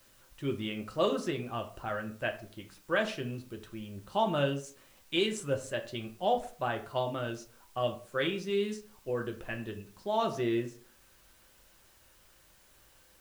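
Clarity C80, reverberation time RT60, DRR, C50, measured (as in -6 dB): 16.0 dB, 0.45 s, 3.5 dB, 12.5 dB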